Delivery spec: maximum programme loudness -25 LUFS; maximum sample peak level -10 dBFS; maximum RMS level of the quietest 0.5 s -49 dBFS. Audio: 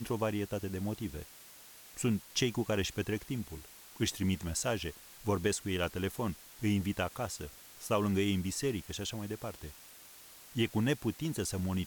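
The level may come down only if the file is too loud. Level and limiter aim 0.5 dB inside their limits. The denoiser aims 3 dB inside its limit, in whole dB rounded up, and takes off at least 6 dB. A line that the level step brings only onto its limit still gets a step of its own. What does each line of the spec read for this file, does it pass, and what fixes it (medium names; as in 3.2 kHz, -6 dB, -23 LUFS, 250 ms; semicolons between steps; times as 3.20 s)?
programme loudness -34.5 LUFS: pass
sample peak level -17.5 dBFS: pass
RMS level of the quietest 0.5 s -54 dBFS: pass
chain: none needed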